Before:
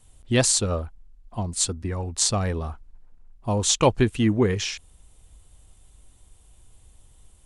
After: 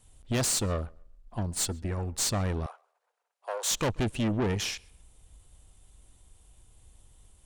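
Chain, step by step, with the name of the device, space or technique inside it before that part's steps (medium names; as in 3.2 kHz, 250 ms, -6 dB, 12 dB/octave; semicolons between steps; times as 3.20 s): rockabilly slapback (valve stage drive 24 dB, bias 0.6; tape echo 133 ms, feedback 26%, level -24 dB, low-pass 3.8 kHz); 2.66–3.71 s: steep high-pass 470 Hz 48 dB/octave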